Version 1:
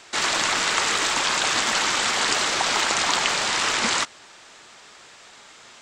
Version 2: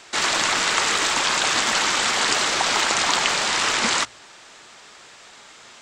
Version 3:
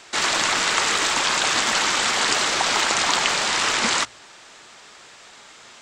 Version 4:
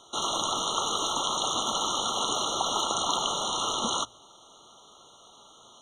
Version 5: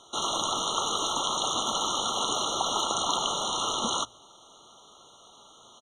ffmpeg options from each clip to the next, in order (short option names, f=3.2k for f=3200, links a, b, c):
-af "bandreject=f=57.78:t=h:w=4,bandreject=f=115.56:t=h:w=4,volume=1.5dB"
-af anull
-af "afftfilt=real='re*eq(mod(floor(b*sr/1024/1400),2),0)':imag='im*eq(mod(floor(b*sr/1024/1400),2),0)':win_size=1024:overlap=0.75,volume=-5dB"
-af "aresample=32000,aresample=44100"